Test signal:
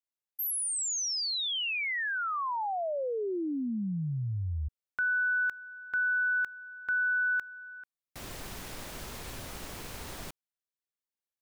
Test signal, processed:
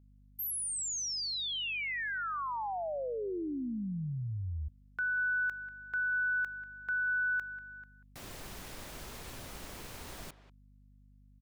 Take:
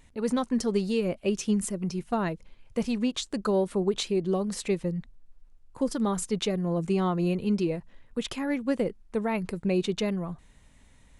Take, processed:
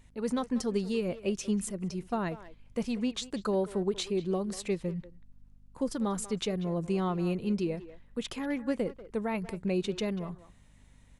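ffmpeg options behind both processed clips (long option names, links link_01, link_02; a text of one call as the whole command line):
ffmpeg -i in.wav -filter_complex "[0:a]aeval=exprs='val(0)+0.00178*(sin(2*PI*50*n/s)+sin(2*PI*2*50*n/s)/2+sin(2*PI*3*50*n/s)/3+sin(2*PI*4*50*n/s)/4+sin(2*PI*5*50*n/s)/5)':channel_layout=same,asplit=2[link_01][link_02];[link_02]adelay=190,highpass=300,lowpass=3400,asoftclip=type=hard:threshold=-24dB,volume=-14dB[link_03];[link_01][link_03]amix=inputs=2:normalize=0,volume=-4dB" out.wav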